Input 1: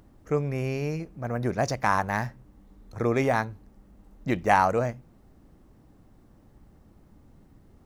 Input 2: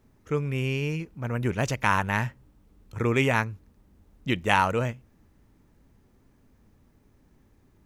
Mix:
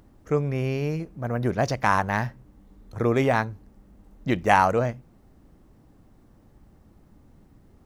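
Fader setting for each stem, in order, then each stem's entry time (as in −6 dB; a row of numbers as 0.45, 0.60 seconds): +0.5, −10.5 decibels; 0.00, 0.00 seconds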